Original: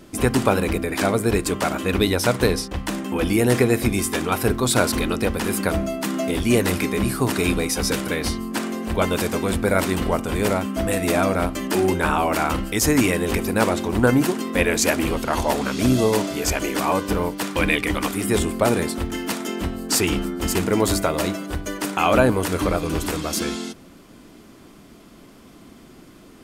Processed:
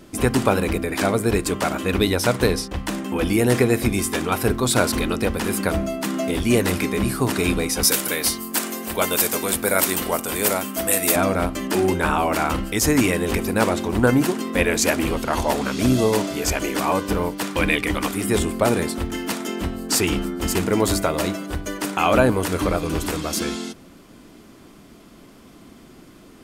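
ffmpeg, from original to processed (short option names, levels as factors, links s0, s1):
-filter_complex "[0:a]asettb=1/sr,asplit=3[s0][s1][s2];[s0]atrim=end=7.834[s3];[s1]atrim=start=7.83:end=11.16,asetpts=PTS-STARTPTS,afade=t=in:d=0.004:c=qsin,afade=t=out:st=3.326:d=0.004:c=qsin,aemphasis=mode=production:type=bsi[s4];[s2]atrim=start=11.156[s5];[s3][s4]acrossfade=d=0.004:c1=hsin:c2=qsin[s6];[s6][s5]acrossfade=d=0.004:c1=qsin:c2=hsin"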